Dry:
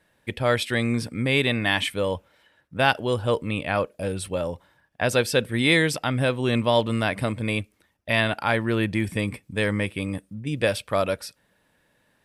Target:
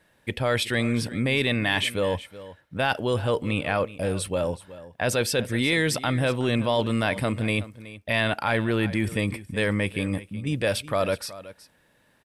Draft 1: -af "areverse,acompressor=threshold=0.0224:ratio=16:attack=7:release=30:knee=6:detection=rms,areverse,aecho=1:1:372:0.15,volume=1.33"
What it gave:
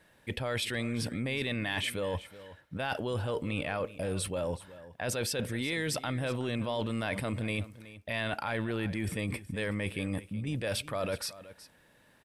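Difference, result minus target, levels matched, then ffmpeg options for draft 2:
compression: peak gain reduction +10.5 dB
-af "areverse,acompressor=threshold=0.0794:ratio=16:attack=7:release=30:knee=6:detection=rms,areverse,aecho=1:1:372:0.15,volume=1.33"

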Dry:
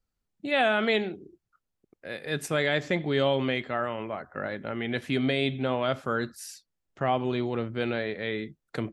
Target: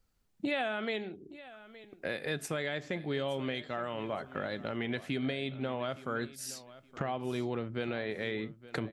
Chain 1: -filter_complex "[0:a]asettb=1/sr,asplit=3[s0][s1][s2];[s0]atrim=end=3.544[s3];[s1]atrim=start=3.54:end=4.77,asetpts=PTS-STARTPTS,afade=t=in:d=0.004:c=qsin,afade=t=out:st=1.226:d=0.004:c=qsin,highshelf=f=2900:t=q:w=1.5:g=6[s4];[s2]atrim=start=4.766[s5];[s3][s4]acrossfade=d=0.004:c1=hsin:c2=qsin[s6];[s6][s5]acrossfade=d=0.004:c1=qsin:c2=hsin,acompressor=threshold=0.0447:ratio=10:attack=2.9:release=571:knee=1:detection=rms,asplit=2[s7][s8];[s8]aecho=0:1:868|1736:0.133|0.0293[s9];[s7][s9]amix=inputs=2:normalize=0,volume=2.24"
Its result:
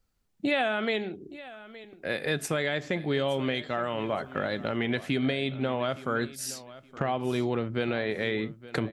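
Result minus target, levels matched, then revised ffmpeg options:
compression: peak gain reduction -6.5 dB
-filter_complex "[0:a]asettb=1/sr,asplit=3[s0][s1][s2];[s0]atrim=end=3.544[s3];[s1]atrim=start=3.54:end=4.77,asetpts=PTS-STARTPTS,afade=t=in:d=0.004:c=qsin,afade=t=out:st=1.226:d=0.004:c=qsin,highshelf=f=2900:t=q:w=1.5:g=6[s4];[s2]atrim=start=4.766[s5];[s3][s4]acrossfade=d=0.004:c1=hsin:c2=qsin[s6];[s6][s5]acrossfade=d=0.004:c1=qsin:c2=hsin,acompressor=threshold=0.02:ratio=10:attack=2.9:release=571:knee=1:detection=rms,asplit=2[s7][s8];[s8]aecho=0:1:868|1736:0.133|0.0293[s9];[s7][s9]amix=inputs=2:normalize=0,volume=2.24"

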